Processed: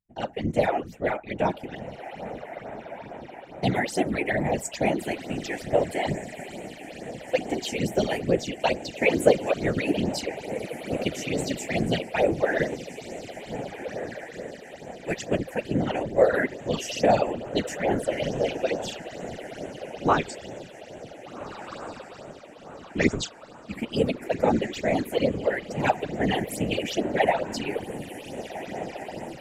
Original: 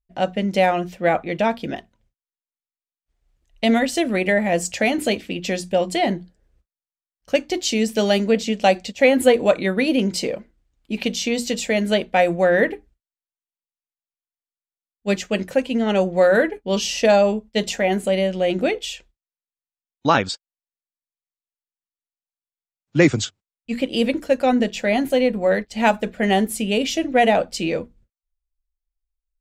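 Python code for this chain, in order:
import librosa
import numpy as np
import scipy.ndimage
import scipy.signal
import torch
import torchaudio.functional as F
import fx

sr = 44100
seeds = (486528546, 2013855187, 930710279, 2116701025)

y = fx.low_shelf(x, sr, hz=120.0, db=-6.5)
y = fx.echo_diffused(y, sr, ms=1581, feedback_pct=52, wet_db=-11.0)
y = fx.phaser_stages(y, sr, stages=8, low_hz=140.0, high_hz=4900.0, hz=2.3, feedback_pct=25)
y = fx.whisperise(y, sr, seeds[0])
y = F.gain(torch.from_numpy(y), -4.0).numpy()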